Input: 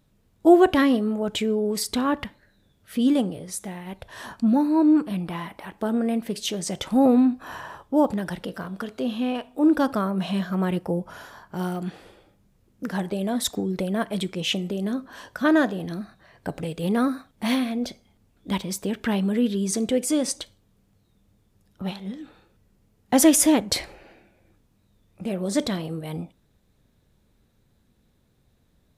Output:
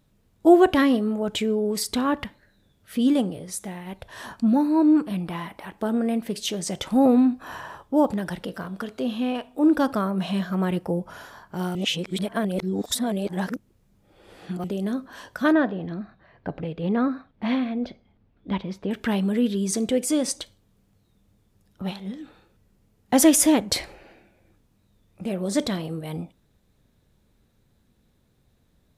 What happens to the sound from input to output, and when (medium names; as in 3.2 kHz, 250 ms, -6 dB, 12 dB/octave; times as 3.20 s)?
11.75–14.64 s: reverse
15.52–18.91 s: distance through air 300 m